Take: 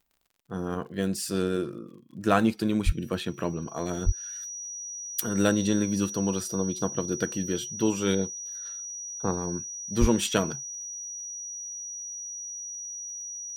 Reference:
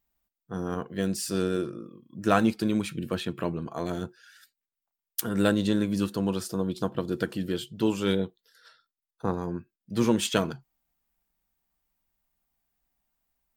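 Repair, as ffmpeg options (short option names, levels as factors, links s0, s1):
-filter_complex "[0:a]adeclick=t=4,bandreject=f=5800:w=30,asplit=3[s0][s1][s2];[s0]afade=t=out:st=2.85:d=0.02[s3];[s1]highpass=f=140:w=0.5412,highpass=f=140:w=1.3066,afade=t=in:st=2.85:d=0.02,afade=t=out:st=2.97:d=0.02[s4];[s2]afade=t=in:st=2.97:d=0.02[s5];[s3][s4][s5]amix=inputs=3:normalize=0,asplit=3[s6][s7][s8];[s6]afade=t=out:st=4.05:d=0.02[s9];[s7]highpass=f=140:w=0.5412,highpass=f=140:w=1.3066,afade=t=in:st=4.05:d=0.02,afade=t=out:st=4.17:d=0.02[s10];[s8]afade=t=in:st=4.17:d=0.02[s11];[s9][s10][s11]amix=inputs=3:normalize=0,asplit=3[s12][s13][s14];[s12]afade=t=out:st=10:d=0.02[s15];[s13]highpass=f=140:w=0.5412,highpass=f=140:w=1.3066,afade=t=in:st=10:d=0.02,afade=t=out:st=10.12:d=0.02[s16];[s14]afade=t=in:st=10.12:d=0.02[s17];[s15][s16][s17]amix=inputs=3:normalize=0"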